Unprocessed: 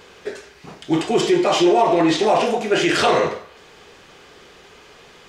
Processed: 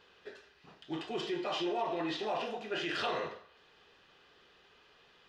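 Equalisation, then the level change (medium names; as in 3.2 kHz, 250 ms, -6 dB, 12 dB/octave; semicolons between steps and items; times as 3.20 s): distance through air 340 m; pre-emphasis filter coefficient 0.9; band-stop 2.2 kHz, Q 7.2; 0.0 dB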